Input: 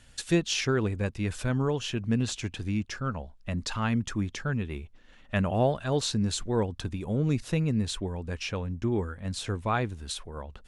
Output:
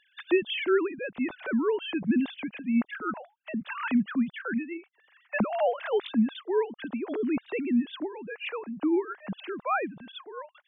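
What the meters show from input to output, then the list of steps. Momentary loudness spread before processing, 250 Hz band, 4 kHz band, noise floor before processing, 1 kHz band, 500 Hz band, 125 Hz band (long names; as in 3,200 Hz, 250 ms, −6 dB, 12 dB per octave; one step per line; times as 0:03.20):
8 LU, +2.5 dB, −5.0 dB, −54 dBFS, +1.0 dB, +2.5 dB, −16.5 dB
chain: three sine waves on the formant tracks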